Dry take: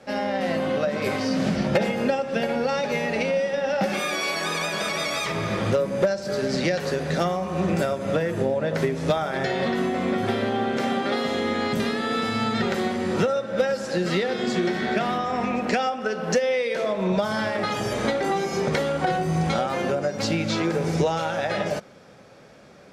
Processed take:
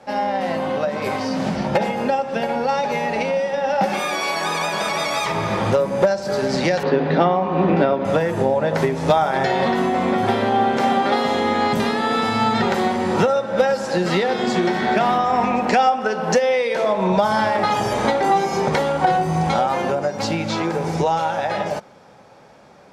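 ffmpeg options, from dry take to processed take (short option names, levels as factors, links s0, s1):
-filter_complex "[0:a]asettb=1/sr,asplit=3[s0][s1][s2];[s0]atrim=end=6.834[s3];[s1]atrim=start=6.83:end=8.05,asetpts=PTS-STARTPTS,afade=t=in:d=0.004:c=qsin,afade=t=out:st=1.216:d=0.004:c=qsin,highpass=130,equalizer=f=150:t=q:w=4:g=3,equalizer=f=280:t=q:w=4:g=10,equalizer=f=430:t=q:w=4:g=5,lowpass=f=3800:w=0.5412,lowpass=f=3800:w=1.3066[s4];[s2]atrim=start=8.046[s5];[s3][s4]acrossfade=d=0.004:c1=hsin:c2=qsin[s6];[s6][s5]acrossfade=d=0.004:c1=qsin:c2=hsin,equalizer=f=880:t=o:w=0.56:g=10.5,dynaudnorm=f=840:g=11:m=1.68"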